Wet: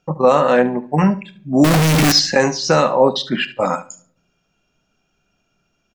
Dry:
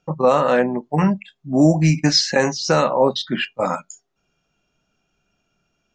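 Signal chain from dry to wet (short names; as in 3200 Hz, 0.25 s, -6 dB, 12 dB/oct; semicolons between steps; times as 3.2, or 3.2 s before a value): 1.64–2.12 infinite clipping; feedback echo 73 ms, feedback 15%, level -16 dB; on a send at -20.5 dB: reverb RT60 0.65 s, pre-delay 4 ms; on the sum: gain +2.5 dB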